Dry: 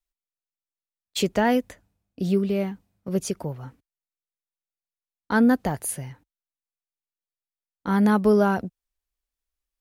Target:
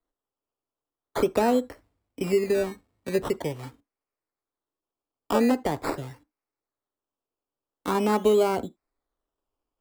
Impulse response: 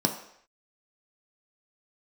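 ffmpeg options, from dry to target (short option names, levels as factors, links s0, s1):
-filter_complex "[0:a]acrusher=samples=17:mix=1:aa=0.000001:lfo=1:lforange=10.2:lforate=0.44,asplit=2[s0][s1];[1:a]atrim=start_sample=2205,afade=t=out:st=0.17:d=0.01,atrim=end_sample=7938,asetrate=61740,aresample=44100[s2];[s1][s2]afir=irnorm=-1:irlink=0,volume=0.133[s3];[s0][s3]amix=inputs=2:normalize=0,acrossover=split=300|1300[s4][s5][s6];[s4]acompressor=threshold=0.0355:ratio=4[s7];[s5]acompressor=threshold=0.112:ratio=4[s8];[s6]acompressor=threshold=0.0141:ratio=4[s9];[s7][s8][s9]amix=inputs=3:normalize=0"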